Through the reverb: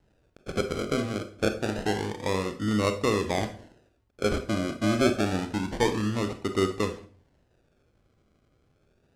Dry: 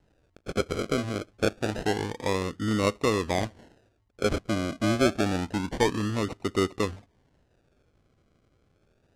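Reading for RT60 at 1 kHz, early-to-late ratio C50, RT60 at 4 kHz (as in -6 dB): 0.40 s, 11.0 dB, 0.40 s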